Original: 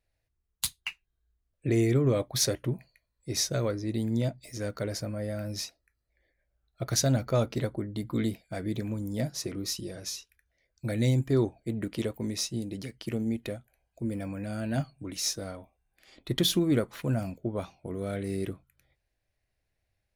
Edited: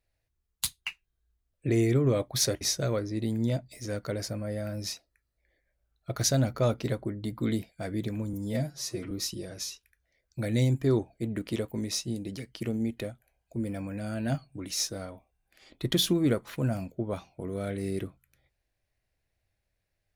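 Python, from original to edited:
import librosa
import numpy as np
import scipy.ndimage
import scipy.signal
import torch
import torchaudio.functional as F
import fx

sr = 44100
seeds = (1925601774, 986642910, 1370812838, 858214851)

y = fx.edit(x, sr, fx.cut(start_s=2.61, length_s=0.72),
    fx.stretch_span(start_s=9.05, length_s=0.52, factor=1.5), tone=tone)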